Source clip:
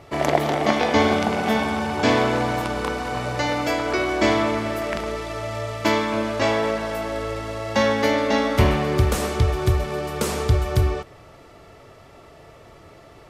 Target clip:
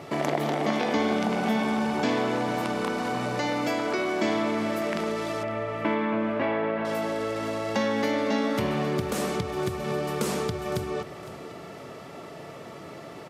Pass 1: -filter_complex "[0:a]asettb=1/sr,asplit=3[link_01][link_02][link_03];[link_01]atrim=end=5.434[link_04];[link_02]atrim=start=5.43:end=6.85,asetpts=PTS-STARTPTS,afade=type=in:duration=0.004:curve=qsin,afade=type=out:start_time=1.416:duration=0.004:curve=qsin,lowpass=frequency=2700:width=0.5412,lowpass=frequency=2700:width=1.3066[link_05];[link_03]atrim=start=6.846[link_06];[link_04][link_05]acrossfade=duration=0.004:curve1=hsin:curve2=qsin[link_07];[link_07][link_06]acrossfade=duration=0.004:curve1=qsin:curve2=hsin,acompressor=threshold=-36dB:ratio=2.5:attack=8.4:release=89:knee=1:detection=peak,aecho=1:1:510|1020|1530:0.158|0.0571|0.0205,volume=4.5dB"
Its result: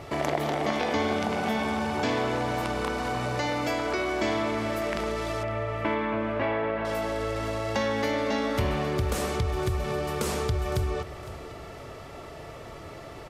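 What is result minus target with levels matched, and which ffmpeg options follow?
250 Hz band −2.5 dB
-filter_complex "[0:a]asettb=1/sr,asplit=3[link_01][link_02][link_03];[link_01]atrim=end=5.434[link_04];[link_02]atrim=start=5.43:end=6.85,asetpts=PTS-STARTPTS,afade=type=in:duration=0.004:curve=qsin,afade=type=out:start_time=1.416:duration=0.004:curve=qsin,lowpass=frequency=2700:width=0.5412,lowpass=frequency=2700:width=1.3066[link_05];[link_03]atrim=start=6.846[link_06];[link_04][link_05]acrossfade=duration=0.004:curve1=hsin:curve2=qsin[link_07];[link_07][link_06]acrossfade=duration=0.004:curve1=qsin:curve2=hsin,acompressor=threshold=-36dB:ratio=2.5:attack=8.4:release=89:knee=1:detection=peak,highpass=frequency=180:width_type=q:width=1.7,aecho=1:1:510|1020|1530:0.158|0.0571|0.0205,volume=4.5dB"

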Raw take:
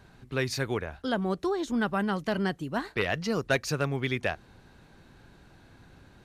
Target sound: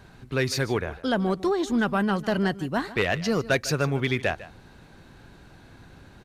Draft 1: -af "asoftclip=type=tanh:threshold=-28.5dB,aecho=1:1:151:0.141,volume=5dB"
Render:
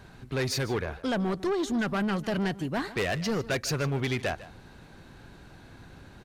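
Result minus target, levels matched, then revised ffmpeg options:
soft clipping: distortion +11 dB
-af "asoftclip=type=tanh:threshold=-17dB,aecho=1:1:151:0.141,volume=5dB"

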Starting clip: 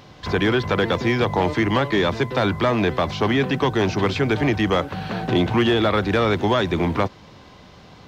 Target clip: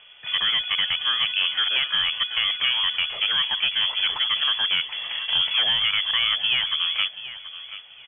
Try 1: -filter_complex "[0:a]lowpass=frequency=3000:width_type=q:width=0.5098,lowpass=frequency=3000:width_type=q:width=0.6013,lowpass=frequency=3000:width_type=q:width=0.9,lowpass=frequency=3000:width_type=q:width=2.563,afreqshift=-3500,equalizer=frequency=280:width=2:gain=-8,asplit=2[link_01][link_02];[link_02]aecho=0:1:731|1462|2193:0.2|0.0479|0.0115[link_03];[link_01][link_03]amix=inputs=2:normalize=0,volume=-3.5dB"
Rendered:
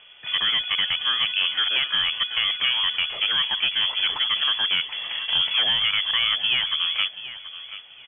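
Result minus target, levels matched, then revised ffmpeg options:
250 Hz band +3.0 dB
-filter_complex "[0:a]lowpass=frequency=3000:width_type=q:width=0.5098,lowpass=frequency=3000:width_type=q:width=0.6013,lowpass=frequency=3000:width_type=q:width=0.9,lowpass=frequency=3000:width_type=q:width=2.563,afreqshift=-3500,equalizer=frequency=280:width=2:gain=-14,asplit=2[link_01][link_02];[link_02]aecho=0:1:731|1462|2193:0.2|0.0479|0.0115[link_03];[link_01][link_03]amix=inputs=2:normalize=0,volume=-3.5dB"

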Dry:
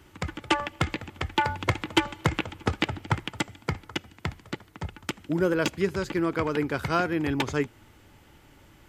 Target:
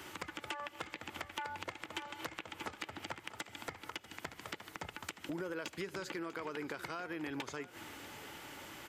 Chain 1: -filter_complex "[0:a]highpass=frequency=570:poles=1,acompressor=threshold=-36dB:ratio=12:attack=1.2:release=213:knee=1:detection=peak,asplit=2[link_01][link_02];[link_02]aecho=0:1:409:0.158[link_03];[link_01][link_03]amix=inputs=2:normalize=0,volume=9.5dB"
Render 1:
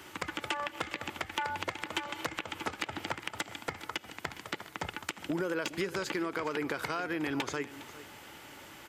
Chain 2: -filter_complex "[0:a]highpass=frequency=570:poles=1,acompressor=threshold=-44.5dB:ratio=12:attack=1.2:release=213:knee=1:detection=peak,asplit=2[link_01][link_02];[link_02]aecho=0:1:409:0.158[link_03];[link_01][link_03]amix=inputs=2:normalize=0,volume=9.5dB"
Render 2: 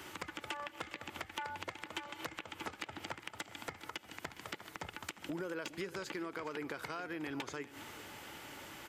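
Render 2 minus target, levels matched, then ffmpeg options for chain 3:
echo 234 ms early
-filter_complex "[0:a]highpass=frequency=570:poles=1,acompressor=threshold=-44.5dB:ratio=12:attack=1.2:release=213:knee=1:detection=peak,asplit=2[link_01][link_02];[link_02]aecho=0:1:643:0.158[link_03];[link_01][link_03]amix=inputs=2:normalize=0,volume=9.5dB"

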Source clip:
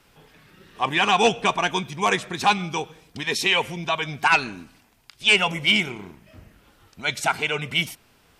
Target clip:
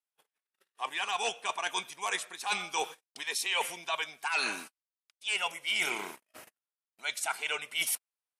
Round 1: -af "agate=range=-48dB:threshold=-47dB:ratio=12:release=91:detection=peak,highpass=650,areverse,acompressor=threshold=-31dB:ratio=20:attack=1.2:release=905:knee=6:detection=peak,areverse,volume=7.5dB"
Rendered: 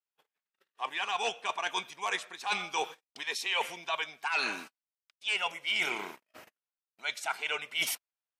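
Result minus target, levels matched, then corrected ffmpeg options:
8,000 Hz band −5.0 dB
-af "agate=range=-48dB:threshold=-47dB:ratio=12:release=91:detection=peak,highpass=650,equalizer=frequency=10000:width_type=o:width=0.87:gain=13,areverse,acompressor=threshold=-31dB:ratio=20:attack=1.2:release=905:knee=6:detection=peak,areverse,volume=7.5dB"

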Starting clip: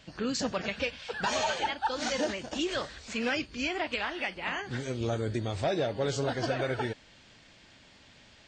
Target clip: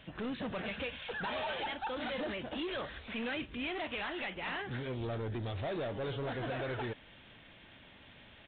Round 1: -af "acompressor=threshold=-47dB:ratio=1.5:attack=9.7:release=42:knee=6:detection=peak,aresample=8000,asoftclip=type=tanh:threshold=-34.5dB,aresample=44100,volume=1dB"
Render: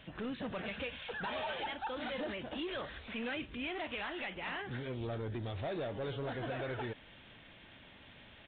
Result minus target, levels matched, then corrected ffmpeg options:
downward compressor: peak gain reduction +3.5 dB
-af "acompressor=threshold=-36.5dB:ratio=1.5:attack=9.7:release=42:knee=6:detection=peak,aresample=8000,asoftclip=type=tanh:threshold=-34.5dB,aresample=44100,volume=1dB"

